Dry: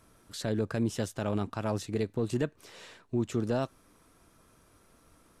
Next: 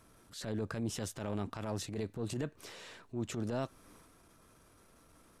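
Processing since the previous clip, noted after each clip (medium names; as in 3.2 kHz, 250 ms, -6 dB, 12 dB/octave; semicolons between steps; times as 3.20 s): transient shaper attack -9 dB, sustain +5 dB; in parallel at 0 dB: compression, threshold -41 dBFS, peak gain reduction 14.5 dB; on the sum: trim -7 dB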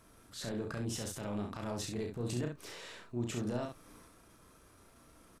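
peak limiter -29 dBFS, peak gain reduction 5 dB; on a send: early reflections 33 ms -5 dB, 67 ms -6 dB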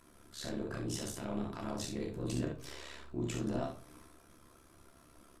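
AM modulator 70 Hz, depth 90%; on a send at -4 dB: reverberation RT60 0.40 s, pre-delay 3 ms; on the sum: trim +2 dB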